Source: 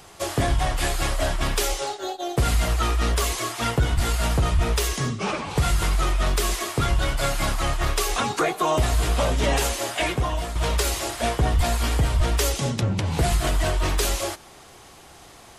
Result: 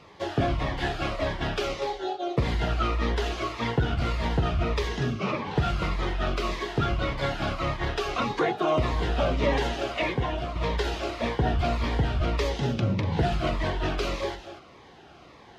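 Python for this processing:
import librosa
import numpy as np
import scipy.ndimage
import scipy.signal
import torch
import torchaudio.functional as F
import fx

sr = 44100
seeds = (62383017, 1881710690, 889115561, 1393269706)

y = fx.highpass(x, sr, hz=140.0, slope=6)
y = fx.air_absorb(y, sr, metres=260.0)
y = y + 10.0 ** (-11.0 / 20.0) * np.pad(y, (int(242 * sr / 1000.0), 0))[:len(y)]
y = fx.notch_cascade(y, sr, direction='falling', hz=1.7)
y = F.gain(torch.from_numpy(y), 1.5).numpy()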